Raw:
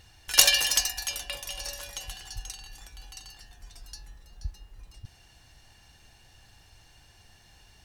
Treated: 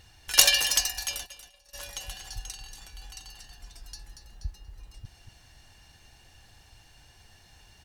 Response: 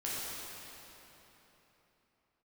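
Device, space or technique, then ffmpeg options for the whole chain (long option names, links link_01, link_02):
ducked delay: -filter_complex "[0:a]asplit=3[link_01][link_02][link_03];[link_01]afade=type=out:start_time=1.25:duration=0.02[link_04];[link_02]agate=range=-25dB:threshold=-31dB:ratio=16:detection=peak,afade=type=in:start_time=1.25:duration=0.02,afade=type=out:start_time=1.73:duration=0.02[link_05];[link_03]afade=type=in:start_time=1.73:duration=0.02[link_06];[link_04][link_05][link_06]amix=inputs=3:normalize=0,asplit=3[link_07][link_08][link_09];[link_08]adelay=234,volume=-7dB[link_10];[link_09]apad=whole_len=356435[link_11];[link_10][link_11]sidechaincompress=threshold=-39dB:ratio=8:attack=8.5:release=511[link_12];[link_07][link_12]amix=inputs=2:normalize=0"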